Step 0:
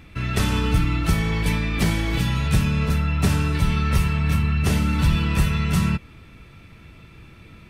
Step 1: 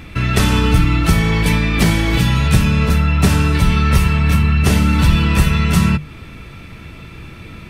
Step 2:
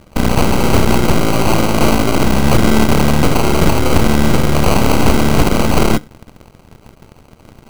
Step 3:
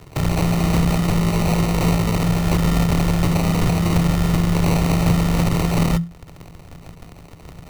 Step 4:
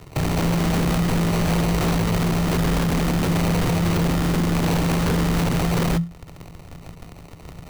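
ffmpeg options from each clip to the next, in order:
ffmpeg -i in.wav -filter_complex "[0:a]bandreject=frequency=50:width_type=h:width=6,bandreject=frequency=100:width_type=h:width=6,bandreject=frequency=150:width_type=h:width=6,asplit=2[link_01][link_02];[link_02]acompressor=threshold=-29dB:ratio=6,volume=-0.5dB[link_03];[link_01][link_03]amix=inputs=2:normalize=0,volume=5.5dB" out.wav
ffmpeg -i in.wav -af "tremolo=f=220:d=0.571,acrusher=samples=25:mix=1:aa=0.000001,aeval=exprs='0.794*(cos(1*acos(clip(val(0)/0.794,-1,1)))-cos(1*PI/2))+0.178*(cos(7*acos(clip(val(0)/0.794,-1,1)))-cos(7*PI/2))+0.398*(cos(8*acos(clip(val(0)/0.794,-1,1)))-cos(8*PI/2))':channel_layout=same,volume=-2dB" out.wav
ffmpeg -i in.wav -af "acompressor=threshold=-33dB:ratio=1.5,afreqshift=-170,volume=2dB" out.wav
ffmpeg -i in.wav -af "aeval=exprs='0.178*(abs(mod(val(0)/0.178+3,4)-2)-1)':channel_layout=same" out.wav

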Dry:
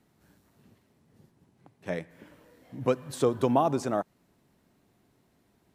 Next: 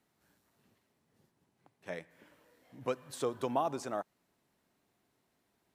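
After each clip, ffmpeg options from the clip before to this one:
ffmpeg -i in.wav -af "lowshelf=frequency=380:gain=-10,volume=-5dB" out.wav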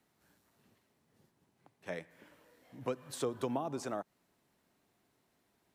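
ffmpeg -i in.wav -filter_complex "[0:a]acrossover=split=390[link_01][link_02];[link_02]acompressor=threshold=-38dB:ratio=6[link_03];[link_01][link_03]amix=inputs=2:normalize=0,volume=1.5dB" out.wav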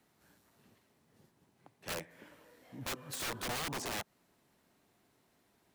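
ffmpeg -i in.wav -af "aeval=exprs='(mod(63.1*val(0)+1,2)-1)/63.1':channel_layout=same,volume=3.5dB" out.wav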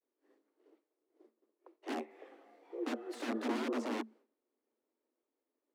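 ffmpeg -i in.wav -af "agate=range=-33dB:threshold=-59dB:ratio=3:detection=peak,aemphasis=mode=reproduction:type=riaa,afreqshift=220,volume=-2.5dB" out.wav

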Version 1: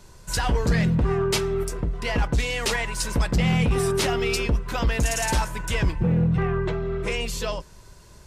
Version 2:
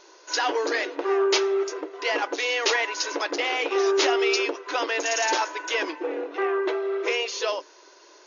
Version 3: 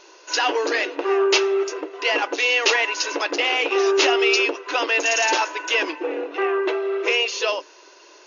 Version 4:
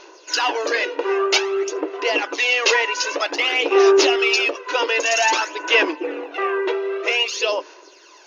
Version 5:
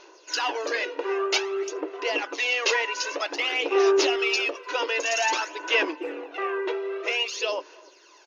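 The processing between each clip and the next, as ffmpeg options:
ffmpeg -i in.wav -af "afftfilt=real='re*between(b*sr/4096,280,6900)':imag='im*between(b*sr/4096,280,6900)':win_size=4096:overlap=0.75,volume=3dB" out.wav
ffmpeg -i in.wav -af "equalizer=frequency=2700:width=6.3:gain=8,volume=3dB" out.wav
ffmpeg -i in.wav -af "aphaser=in_gain=1:out_gain=1:delay=2.1:decay=0.51:speed=0.52:type=sinusoidal" out.wav
ffmpeg -i in.wav -filter_complex "[0:a]asplit=2[link_01][link_02];[link_02]adelay=300,highpass=300,lowpass=3400,asoftclip=type=hard:threshold=-11.5dB,volume=-26dB[link_03];[link_01][link_03]amix=inputs=2:normalize=0,volume=-6.5dB" out.wav

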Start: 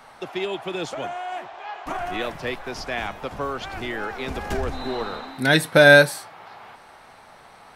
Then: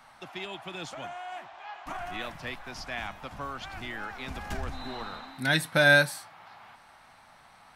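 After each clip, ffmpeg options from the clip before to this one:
ffmpeg -i in.wav -af "equalizer=frequency=430:width_type=o:width=0.83:gain=-11,volume=-6dB" out.wav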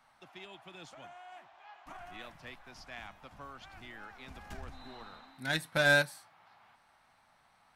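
ffmpeg -i in.wav -af "aeval=exprs='0.376*(cos(1*acos(clip(val(0)/0.376,-1,1)))-cos(1*PI/2))+0.0266*(cos(7*acos(clip(val(0)/0.376,-1,1)))-cos(7*PI/2))':channel_layout=same,volume=-5.5dB" out.wav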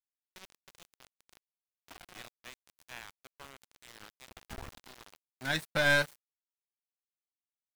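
ffmpeg -i in.wav -af "aeval=exprs='(tanh(12.6*val(0)+0.5)-tanh(0.5))/12.6':channel_layout=same,aeval=exprs='val(0)*gte(abs(val(0)),0.00668)':channel_layout=same,volume=3dB" out.wav

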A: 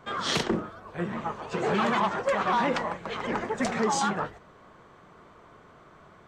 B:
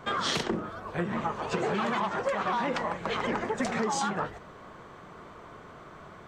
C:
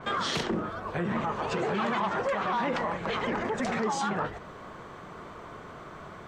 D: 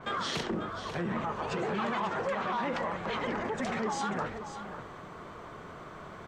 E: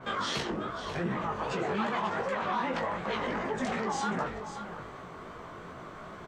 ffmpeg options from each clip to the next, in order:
ffmpeg -i in.wav -af "acompressor=threshold=-32dB:ratio=6,volume=5.5dB" out.wav
ffmpeg -i in.wav -af "alimiter=level_in=1dB:limit=-24dB:level=0:latency=1:release=18,volume=-1dB,adynamicequalizer=threshold=0.00224:dfrequency=5100:dqfactor=0.7:tfrequency=5100:tqfactor=0.7:attack=5:release=100:ratio=0.375:range=2.5:mode=cutabove:tftype=highshelf,volume=3.5dB" out.wav
ffmpeg -i in.wav -af "areverse,acompressor=mode=upward:threshold=-37dB:ratio=2.5,areverse,aecho=1:1:541:0.299,volume=-3.5dB" out.wav
ffmpeg -i in.wav -filter_complex "[0:a]flanger=delay=15:depth=5.3:speed=2.6,asplit=2[link_01][link_02];[link_02]adelay=23,volume=-11dB[link_03];[link_01][link_03]amix=inputs=2:normalize=0,volume=3.5dB" out.wav

